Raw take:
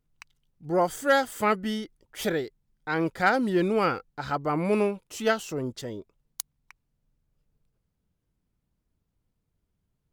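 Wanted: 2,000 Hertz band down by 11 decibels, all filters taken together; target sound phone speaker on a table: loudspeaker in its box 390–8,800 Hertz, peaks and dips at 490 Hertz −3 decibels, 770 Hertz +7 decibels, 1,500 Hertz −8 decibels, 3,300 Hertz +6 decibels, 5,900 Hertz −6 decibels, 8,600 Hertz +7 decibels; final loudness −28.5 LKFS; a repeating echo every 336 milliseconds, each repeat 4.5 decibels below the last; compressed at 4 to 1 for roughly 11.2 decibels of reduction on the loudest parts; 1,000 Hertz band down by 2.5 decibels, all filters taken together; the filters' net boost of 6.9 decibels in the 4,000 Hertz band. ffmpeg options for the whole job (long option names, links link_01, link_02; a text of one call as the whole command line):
ffmpeg -i in.wav -af "equalizer=frequency=1000:width_type=o:gain=-6.5,equalizer=frequency=2000:width_type=o:gain=-9,equalizer=frequency=4000:width_type=o:gain=8.5,acompressor=threshold=-34dB:ratio=4,highpass=frequency=390:width=0.5412,highpass=frequency=390:width=1.3066,equalizer=frequency=490:width_type=q:width=4:gain=-3,equalizer=frequency=770:width_type=q:width=4:gain=7,equalizer=frequency=1500:width_type=q:width=4:gain=-8,equalizer=frequency=3300:width_type=q:width=4:gain=6,equalizer=frequency=5900:width_type=q:width=4:gain=-6,equalizer=frequency=8600:width_type=q:width=4:gain=7,lowpass=frequency=8800:width=0.5412,lowpass=frequency=8800:width=1.3066,aecho=1:1:336|672|1008|1344|1680|2016|2352|2688|3024:0.596|0.357|0.214|0.129|0.0772|0.0463|0.0278|0.0167|0.01,volume=9.5dB" out.wav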